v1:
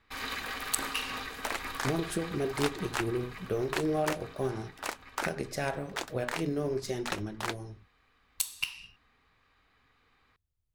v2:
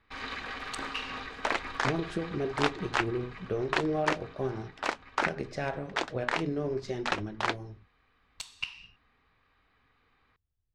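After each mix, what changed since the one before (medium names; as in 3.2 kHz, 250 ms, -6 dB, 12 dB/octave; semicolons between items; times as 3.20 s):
second sound +6.5 dB; master: add distance through air 130 m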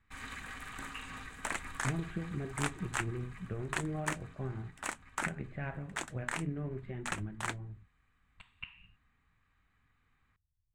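speech: add inverse Chebyshev low-pass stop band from 5.5 kHz, stop band 40 dB; master: add FFT filter 170 Hz 0 dB, 460 Hz -14 dB, 1.8 kHz -5 dB, 5 kHz -12 dB, 8 kHz +12 dB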